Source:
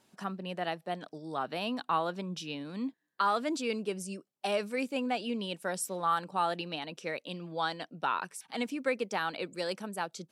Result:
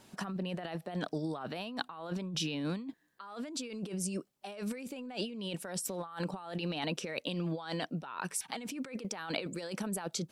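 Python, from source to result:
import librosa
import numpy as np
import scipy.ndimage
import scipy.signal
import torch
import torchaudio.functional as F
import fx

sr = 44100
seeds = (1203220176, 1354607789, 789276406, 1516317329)

y = fx.low_shelf(x, sr, hz=91.0, db=11.0)
y = fx.over_compress(y, sr, threshold_db=-41.0, ratio=-1.0)
y = y * 10.0 ** (2.0 / 20.0)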